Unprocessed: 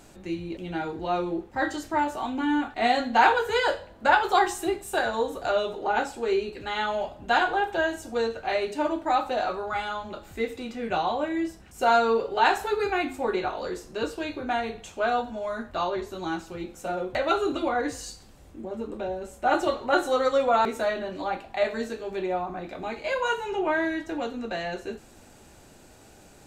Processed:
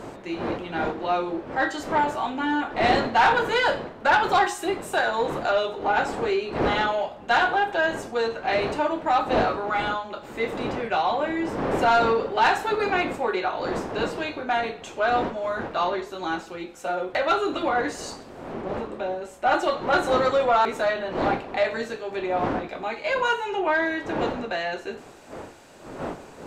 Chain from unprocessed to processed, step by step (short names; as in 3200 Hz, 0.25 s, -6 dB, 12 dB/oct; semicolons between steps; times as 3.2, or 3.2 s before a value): wind noise 410 Hz -32 dBFS; overdrive pedal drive 17 dB, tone 3500 Hz, clips at -4 dBFS; gain -5 dB